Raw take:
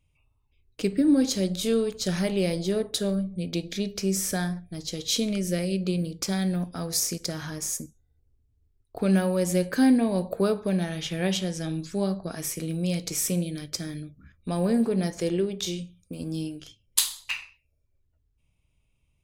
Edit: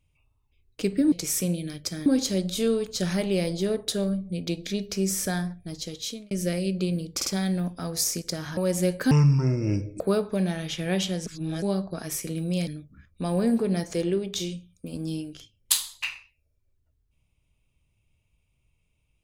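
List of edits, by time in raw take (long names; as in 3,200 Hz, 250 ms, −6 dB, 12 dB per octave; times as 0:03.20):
0:04.80–0:05.37: fade out
0:06.22: stutter 0.05 s, 3 plays
0:07.53–0:09.29: remove
0:09.83–0:10.33: play speed 56%
0:11.59–0:11.95: reverse
0:13.00–0:13.94: move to 0:01.12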